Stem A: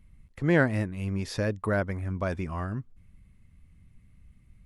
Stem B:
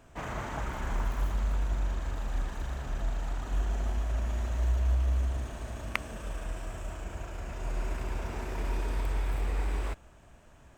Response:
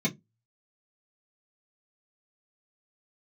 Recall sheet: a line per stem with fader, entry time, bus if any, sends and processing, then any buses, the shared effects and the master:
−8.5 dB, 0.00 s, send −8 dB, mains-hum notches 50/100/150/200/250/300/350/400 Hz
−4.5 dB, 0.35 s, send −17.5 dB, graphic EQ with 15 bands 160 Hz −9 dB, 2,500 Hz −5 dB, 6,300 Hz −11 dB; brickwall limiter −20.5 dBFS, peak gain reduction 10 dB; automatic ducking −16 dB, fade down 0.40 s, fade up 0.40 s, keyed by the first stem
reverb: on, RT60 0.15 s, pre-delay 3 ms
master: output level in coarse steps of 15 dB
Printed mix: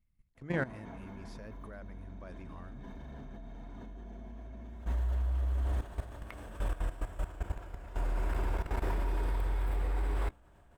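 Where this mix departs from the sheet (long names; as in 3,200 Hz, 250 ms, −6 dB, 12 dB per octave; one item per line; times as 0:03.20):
stem A: send off
stem B −4.5 dB → +5.5 dB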